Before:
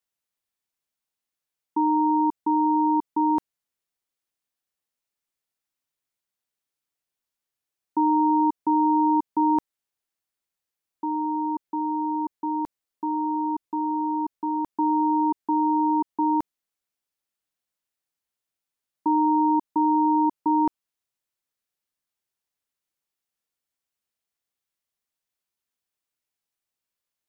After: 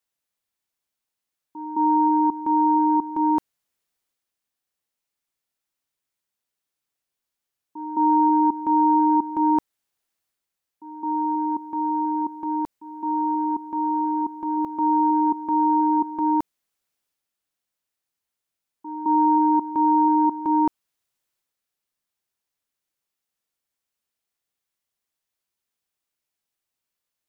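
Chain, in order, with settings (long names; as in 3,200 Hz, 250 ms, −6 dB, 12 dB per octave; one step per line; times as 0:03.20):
transient designer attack −4 dB, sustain +4 dB
echo ahead of the sound 214 ms −13 dB
level +2 dB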